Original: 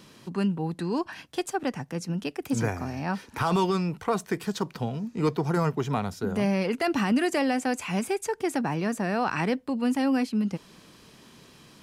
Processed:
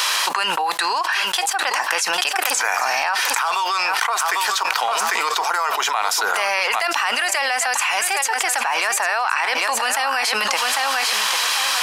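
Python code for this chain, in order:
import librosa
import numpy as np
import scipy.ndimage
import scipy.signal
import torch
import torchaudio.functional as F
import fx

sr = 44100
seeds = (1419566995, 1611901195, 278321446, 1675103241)

y = scipy.signal.sosfilt(scipy.signal.butter(4, 850.0, 'highpass', fs=sr, output='sos'), x)
y = fx.echo_feedback(y, sr, ms=798, feedback_pct=17, wet_db=-13.5)
y = fx.env_flatten(y, sr, amount_pct=100)
y = y * 10.0 ** (6.0 / 20.0)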